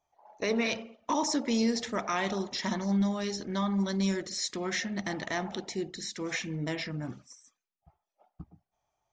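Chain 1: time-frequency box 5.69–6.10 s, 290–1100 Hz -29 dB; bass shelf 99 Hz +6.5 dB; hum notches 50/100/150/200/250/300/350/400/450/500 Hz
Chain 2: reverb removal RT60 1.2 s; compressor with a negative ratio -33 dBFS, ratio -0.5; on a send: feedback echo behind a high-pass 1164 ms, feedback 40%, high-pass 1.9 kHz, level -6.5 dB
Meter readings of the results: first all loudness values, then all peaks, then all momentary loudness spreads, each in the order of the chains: -32.0 LUFS, -35.0 LUFS; -16.5 dBFS, -16.0 dBFS; 11 LU, 13 LU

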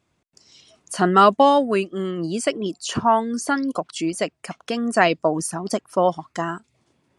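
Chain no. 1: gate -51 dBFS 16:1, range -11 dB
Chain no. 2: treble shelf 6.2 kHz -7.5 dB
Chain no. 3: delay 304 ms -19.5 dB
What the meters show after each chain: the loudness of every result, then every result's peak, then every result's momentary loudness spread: -21.0 LUFS, -21.5 LUFS, -21.0 LUFS; -1.0 dBFS, -1.5 dBFS, -1.0 dBFS; 14 LU, 14 LU, 14 LU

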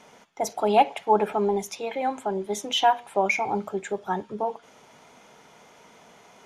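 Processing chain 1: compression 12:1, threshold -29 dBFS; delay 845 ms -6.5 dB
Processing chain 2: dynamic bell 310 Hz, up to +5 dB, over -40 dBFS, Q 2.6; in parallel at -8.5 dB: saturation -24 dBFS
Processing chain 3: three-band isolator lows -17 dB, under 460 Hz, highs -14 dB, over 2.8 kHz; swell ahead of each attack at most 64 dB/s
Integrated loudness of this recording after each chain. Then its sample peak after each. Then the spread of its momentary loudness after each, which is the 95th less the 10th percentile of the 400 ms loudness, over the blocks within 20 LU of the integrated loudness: -34.5 LUFS, -23.5 LUFS, -26.0 LUFS; -18.0 dBFS, -6.5 dBFS, -8.5 dBFS; 19 LU, 9 LU, 12 LU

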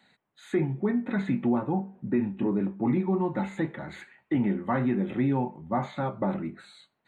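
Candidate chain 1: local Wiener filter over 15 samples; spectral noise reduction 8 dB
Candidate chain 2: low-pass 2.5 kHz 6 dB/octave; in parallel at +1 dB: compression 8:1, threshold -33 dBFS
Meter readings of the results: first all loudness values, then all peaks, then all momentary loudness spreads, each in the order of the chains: -28.5 LUFS, -26.0 LUFS; -16.5 dBFS, -13.5 dBFS; 6 LU, 6 LU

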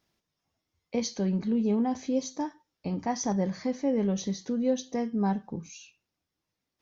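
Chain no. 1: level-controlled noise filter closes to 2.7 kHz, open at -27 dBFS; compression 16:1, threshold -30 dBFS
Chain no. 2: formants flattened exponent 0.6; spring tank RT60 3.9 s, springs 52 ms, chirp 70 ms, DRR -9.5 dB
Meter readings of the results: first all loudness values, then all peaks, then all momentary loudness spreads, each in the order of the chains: -36.0 LUFS, -21.0 LUFS; -21.0 dBFS, -7.0 dBFS; 7 LU, 10 LU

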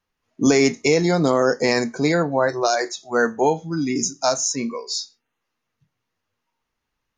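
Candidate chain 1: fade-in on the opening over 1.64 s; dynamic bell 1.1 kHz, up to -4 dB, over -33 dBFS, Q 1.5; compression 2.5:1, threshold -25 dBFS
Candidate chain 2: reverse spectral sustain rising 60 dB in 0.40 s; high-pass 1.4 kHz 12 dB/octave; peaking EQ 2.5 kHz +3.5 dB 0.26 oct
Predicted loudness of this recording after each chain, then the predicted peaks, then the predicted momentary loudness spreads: -27.5 LUFS, -24.5 LUFS; -9.0 dBFS, -6.5 dBFS; 3 LU, 9 LU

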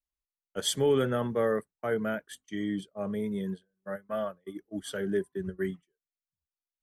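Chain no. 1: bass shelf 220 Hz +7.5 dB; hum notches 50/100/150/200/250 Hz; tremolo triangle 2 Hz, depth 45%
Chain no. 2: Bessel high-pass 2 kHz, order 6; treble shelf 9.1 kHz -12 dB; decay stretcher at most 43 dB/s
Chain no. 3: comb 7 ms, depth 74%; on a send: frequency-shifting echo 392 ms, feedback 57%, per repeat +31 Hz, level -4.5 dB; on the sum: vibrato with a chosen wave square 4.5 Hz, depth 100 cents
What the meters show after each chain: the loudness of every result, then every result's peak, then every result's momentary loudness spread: -32.5 LUFS, -40.5 LUFS, -28.0 LUFS; -16.0 dBFS, -19.0 dBFS, -11.0 dBFS; 13 LU, 22 LU, 14 LU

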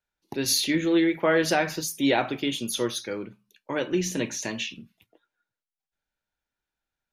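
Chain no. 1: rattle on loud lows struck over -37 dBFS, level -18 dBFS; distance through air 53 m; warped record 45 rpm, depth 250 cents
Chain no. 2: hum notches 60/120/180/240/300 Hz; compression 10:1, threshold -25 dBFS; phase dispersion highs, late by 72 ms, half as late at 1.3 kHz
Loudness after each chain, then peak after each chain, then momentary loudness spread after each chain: -25.5 LUFS, -30.5 LUFS; -9.5 dBFS, -16.0 dBFS; 13 LU, 8 LU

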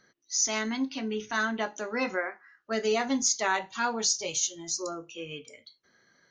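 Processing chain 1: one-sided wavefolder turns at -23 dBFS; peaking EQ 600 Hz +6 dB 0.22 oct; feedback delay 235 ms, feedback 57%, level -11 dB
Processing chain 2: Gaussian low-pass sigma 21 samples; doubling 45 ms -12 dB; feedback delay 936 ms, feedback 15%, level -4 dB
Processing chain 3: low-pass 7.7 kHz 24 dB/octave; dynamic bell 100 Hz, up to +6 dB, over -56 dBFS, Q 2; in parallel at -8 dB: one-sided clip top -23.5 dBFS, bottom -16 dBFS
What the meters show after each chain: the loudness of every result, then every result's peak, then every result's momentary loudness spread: -29.5 LUFS, -38.0 LUFS, -26.5 LUFS; -13.0 dBFS, -22.0 dBFS, -12.0 dBFS; 12 LU, 15 LU, 11 LU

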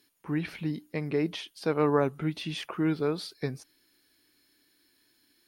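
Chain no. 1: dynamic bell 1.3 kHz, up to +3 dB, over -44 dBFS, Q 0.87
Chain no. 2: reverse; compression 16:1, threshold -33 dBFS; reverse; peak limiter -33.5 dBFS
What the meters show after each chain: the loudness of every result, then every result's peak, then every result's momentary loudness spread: -30.0 LUFS, -43.0 LUFS; -10.0 dBFS, -33.5 dBFS; 11 LU, 5 LU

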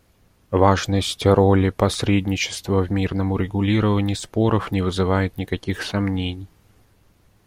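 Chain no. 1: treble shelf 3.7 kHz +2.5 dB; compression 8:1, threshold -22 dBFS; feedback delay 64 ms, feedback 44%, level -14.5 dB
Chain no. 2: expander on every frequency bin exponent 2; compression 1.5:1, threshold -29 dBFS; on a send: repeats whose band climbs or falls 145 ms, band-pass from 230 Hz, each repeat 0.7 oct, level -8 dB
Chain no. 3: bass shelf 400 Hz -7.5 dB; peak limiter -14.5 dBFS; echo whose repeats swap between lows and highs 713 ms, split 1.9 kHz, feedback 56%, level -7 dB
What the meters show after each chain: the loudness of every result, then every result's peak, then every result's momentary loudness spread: -27.0 LUFS, -28.5 LUFS, -26.5 LUFS; -10.5 dBFS, -11.0 dBFS, -11.5 dBFS; 3 LU, 8 LU, 11 LU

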